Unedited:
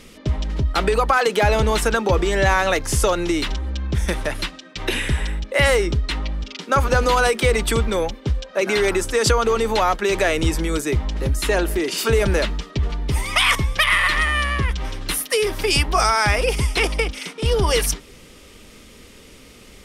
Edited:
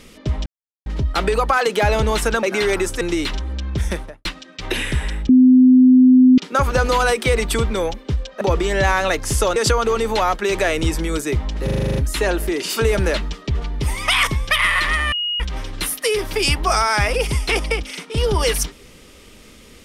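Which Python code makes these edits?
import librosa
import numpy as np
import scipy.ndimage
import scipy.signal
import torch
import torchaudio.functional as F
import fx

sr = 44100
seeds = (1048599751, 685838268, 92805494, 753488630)

y = fx.studio_fade_out(x, sr, start_s=4.0, length_s=0.42)
y = fx.edit(y, sr, fx.insert_silence(at_s=0.46, length_s=0.4),
    fx.swap(start_s=2.03, length_s=1.15, other_s=8.58, other_length_s=0.58),
    fx.bleep(start_s=5.46, length_s=1.09, hz=255.0, db=-6.5),
    fx.stutter(start_s=11.24, slice_s=0.04, count=9),
    fx.bleep(start_s=14.4, length_s=0.28, hz=2880.0, db=-19.5), tone=tone)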